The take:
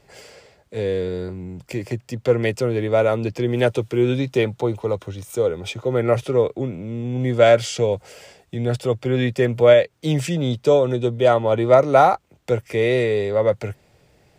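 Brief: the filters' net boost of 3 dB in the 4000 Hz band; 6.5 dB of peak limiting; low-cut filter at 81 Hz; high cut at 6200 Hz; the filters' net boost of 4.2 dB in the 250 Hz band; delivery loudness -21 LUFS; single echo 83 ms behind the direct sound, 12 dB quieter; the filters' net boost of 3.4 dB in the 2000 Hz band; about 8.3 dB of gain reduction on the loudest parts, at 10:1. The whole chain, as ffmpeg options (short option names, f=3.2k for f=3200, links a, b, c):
-af "highpass=81,lowpass=6.2k,equalizer=f=250:t=o:g=5.5,equalizer=f=2k:t=o:g=3.5,equalizer=f=4k:t=o:g=3,acompressor=threshold=-15dB:ratio=10,alimiter=limit=-13.5dB:level=0:latency=1,aecho=1:1:83:0.251,volume=2.5dB"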